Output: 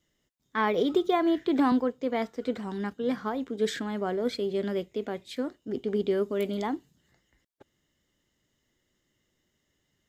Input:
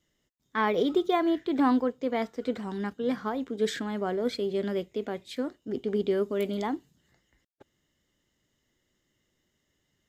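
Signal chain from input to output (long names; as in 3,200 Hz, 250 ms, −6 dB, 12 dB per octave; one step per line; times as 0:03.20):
0:00.94–0:01.72: multiband upward and downward compressor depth 70%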